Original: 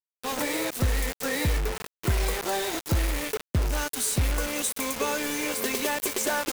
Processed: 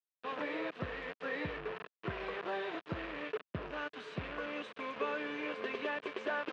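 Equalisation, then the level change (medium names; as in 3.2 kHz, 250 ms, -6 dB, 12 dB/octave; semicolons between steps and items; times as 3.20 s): cabinet simulation 250–2500 Hz, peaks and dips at 250 Hz -10 dB, 360 Hz -5 dB, 540 Hz -5 dB, 830 Hz -10 dB, 1.4 kHz -4 dB, 2.1 kHz -8 dB; -2.5 dB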